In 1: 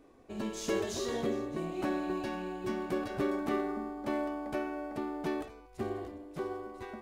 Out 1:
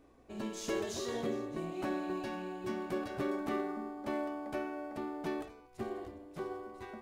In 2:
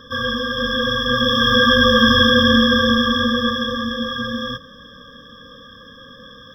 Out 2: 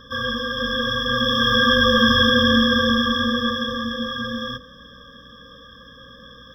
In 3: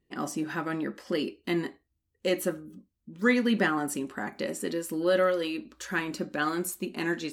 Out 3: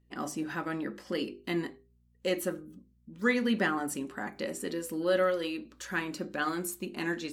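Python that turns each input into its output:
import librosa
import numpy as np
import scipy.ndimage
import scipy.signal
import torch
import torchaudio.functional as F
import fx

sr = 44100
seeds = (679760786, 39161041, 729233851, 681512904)

y = fx.add_hum(x, sr, base_hz=60, snr_db=34)
y = fx.hum_notches(y, sr, base_hz=50, count=10)
y = y * 10.0 ** (-2.5 / 20.0)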